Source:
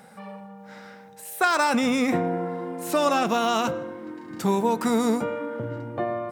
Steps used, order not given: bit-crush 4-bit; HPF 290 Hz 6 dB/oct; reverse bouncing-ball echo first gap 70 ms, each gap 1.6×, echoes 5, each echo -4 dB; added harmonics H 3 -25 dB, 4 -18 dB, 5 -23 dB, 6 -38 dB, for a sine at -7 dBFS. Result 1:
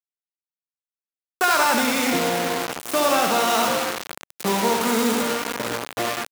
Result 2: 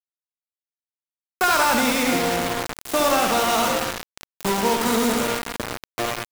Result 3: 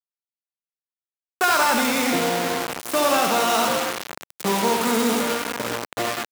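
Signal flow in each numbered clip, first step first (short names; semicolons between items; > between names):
added harmonics > reverse bouncing-ball echo > bit-crush > HPF; HPF > added harmonics > reverse bouncing-ball echo > bit-crush; reverse bouncing-ball echo > added harmonics > bit-crush > HPF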